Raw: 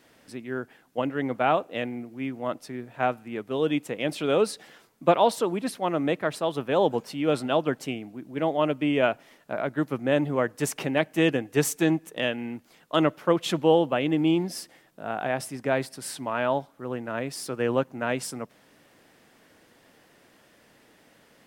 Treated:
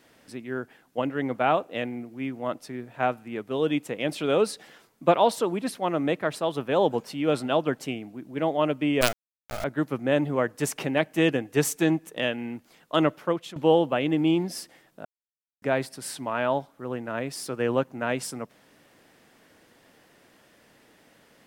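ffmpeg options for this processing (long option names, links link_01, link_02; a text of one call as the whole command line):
ffmpeg -i in.wav -filter_complex "[0:a]asettb=1/sr,asplit=3[link_01][link_02][link_03];[link_01]atrim=end=9.014[link_04];[link_02]atrim=start=9.01:end=9.64,asetpts=PTS-STARTPTS,afade=type=in:duration=0.004:curve=qsin,afade=type=out:start_time=0.626:duration=0.004:curve=qsin,acrusher=bits=3:dc=4:mix=0:aa=0.000001[link_05];[link_03]atrim=start=9.636[link_06];[link_04][link_05]acrossfade=duration=0.004:curve1=hsin:curve2=qsin[link_07];[link_07][link_06]acrossfade=duration=0.004:curve1=qsin:curve2=hsin,asplit=4[link_08][link_09][link_10][link_11];[link_08]atrim=end=13.56,asetpts=PTS-STARTPTS,afade=type=out:start_time=13.14:duration=0.42:silence=0.105925[link_12];[link_09]atrim=start=13.56:end=15.05,asetpts=PTS-STARTPTS,afade=type=in:duration=0.004:curve=hsin:silence=0.105925,afade=type=out:start_time=1.486:duration=0.004:curve=hsin[link_13];[link_10]atrim=start=15.05:end=15.62,asetpts=PTS-STARTPTS,volume=0[link_14];[link_11]atrim=start=15.62,asetpts=PTS-STARTPTS,afade=type=in:duration=0.004:curve=hsin[link_15];[link_12][link_13][link_14][link_15]concat=n=4:v=0:a=1" out.wav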